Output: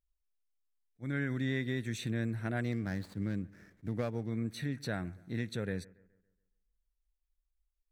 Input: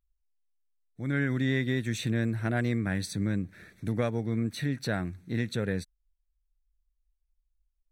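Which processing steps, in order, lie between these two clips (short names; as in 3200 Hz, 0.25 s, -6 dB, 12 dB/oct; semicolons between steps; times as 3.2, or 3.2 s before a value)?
2.72–4.29 median filter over 15 samples; analogue delay 0.14 s, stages 2048, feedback 43%, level -22.5 dB; attack slew limiter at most 560 dB/s; gain -6 dB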